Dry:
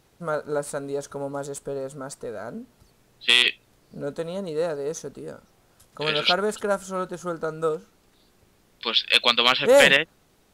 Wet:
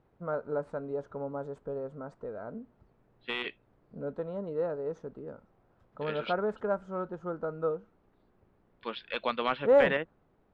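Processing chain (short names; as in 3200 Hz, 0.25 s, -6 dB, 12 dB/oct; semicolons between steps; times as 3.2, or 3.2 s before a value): LPF 1300 Hz 12 dB/oct; gain -5.5 dB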